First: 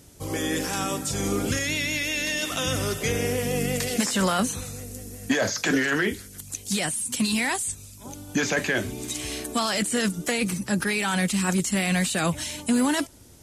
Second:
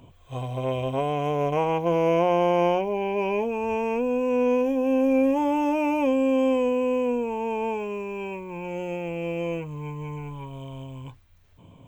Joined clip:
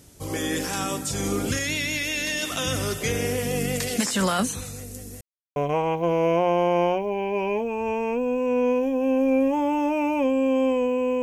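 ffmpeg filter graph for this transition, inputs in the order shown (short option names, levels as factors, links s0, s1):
-filter_complex "[0:a]apad=whole_dur=11.22,atrim=end=11.22,asplit=2[s0][s1];[s0]atrim=end=5.21,asetpts=PTS-STARTPTS,afade=t=out:st=5.206:d=0.004:c=hsin[s2];[s1]atrim=start=5.21:end=5.56,asetpts=PTS-STARTPTS,volume=0[s3];[1:a]atrim=start=1.39:end=7.05,asetpts=PTS-STARTPTS,afade=t=in:d=0.004:c=hsin[s4];[s2][s3][s4]concat=n=3:v=0:a=1"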